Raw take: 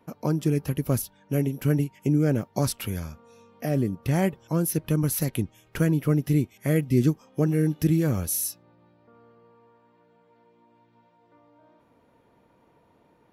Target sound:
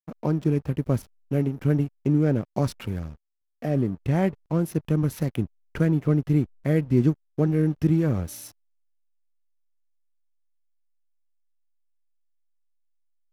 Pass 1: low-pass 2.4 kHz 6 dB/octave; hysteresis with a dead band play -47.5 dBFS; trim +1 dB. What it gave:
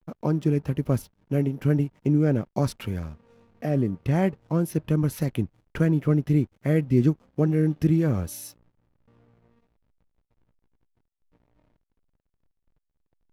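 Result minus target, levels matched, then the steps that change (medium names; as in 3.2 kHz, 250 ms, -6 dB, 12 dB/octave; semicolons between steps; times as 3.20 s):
hysteresis with a dead band: distortion -7 dB
change: hysteresis with a dead band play -39 dBFS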